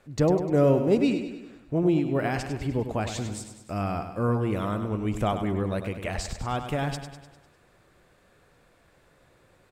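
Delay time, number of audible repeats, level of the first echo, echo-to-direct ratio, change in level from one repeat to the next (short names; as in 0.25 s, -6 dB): 0.1 s, 5, -9.0 dB, -7.5 dB, -5.5 dB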